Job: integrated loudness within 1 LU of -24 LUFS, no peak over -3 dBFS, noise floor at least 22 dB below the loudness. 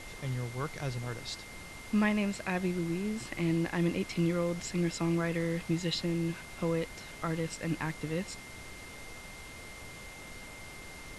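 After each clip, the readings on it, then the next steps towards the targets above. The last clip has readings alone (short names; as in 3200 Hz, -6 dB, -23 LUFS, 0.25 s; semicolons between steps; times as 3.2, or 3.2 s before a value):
steady tone 2100 Hz; tone level -49 dBFS; noise floor -47 dBFS; noise floor target -56 dBFS; loudness -33.5 LUFS; peak -18.0 dBFS; loudness target -24.0 LUFS
-> notch 2100 Hz, Q 30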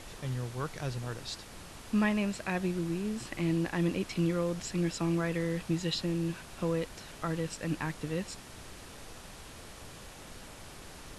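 steady tone none; noise floor -49 dBFS; noise floor target -56 dBFS
-> noise print and reduce 7 dB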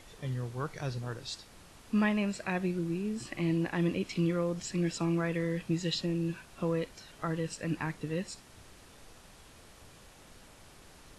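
noise floor -56 dBFS; loudness -33.5 LUFS; peak -18.5 dBFS; loudness target -24.0 LUFS
-> gain +9.5 dB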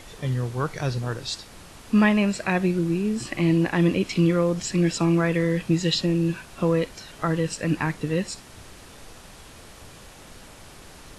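loudness -24.0 LUFS; peak -9.0 dBFS; noise floor -46 dBFS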